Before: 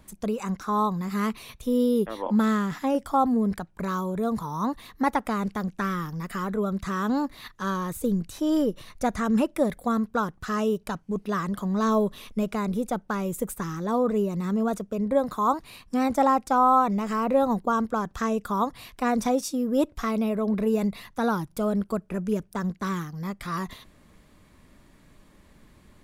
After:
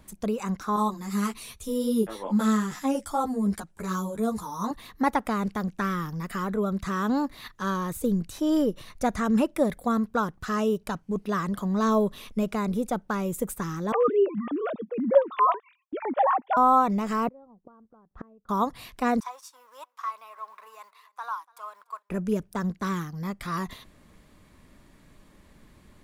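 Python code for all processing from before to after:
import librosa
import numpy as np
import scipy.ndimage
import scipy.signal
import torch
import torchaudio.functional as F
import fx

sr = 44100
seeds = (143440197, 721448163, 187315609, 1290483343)

y = fx.chain(x, sr, fx.peak_eq(hz=8500.0, db=11.5, octaves=1.4),
    fx.ensemble(), at=(0.76, 4.71))
y = fx.chain(y, sr, fx.sine_speech(),
    fx.gate_hold(open_db=-43.0, close_db=-52.0, hold_ms=71.0, range_db=-21, attack_ms=1.4, release_ms=100.0), at=(13.92, 16.57))
y = fx.chain(y, sr, fx.lowpass(hz=1000.0, slope=12),
    fx.gate_flip(shuts_db=-24.0, range_db=-29), at=(17.28, 18.49))
y = fx.chain(y, sr, fx.law_mismatch(coded='A'),
    fx.ladder_highpass(hz=980.0, resonance_pct=75),
    fx.echo_feedback(ms=290, feedback_pct=21, wet_db=-24.0), at=(19.2, 22.1))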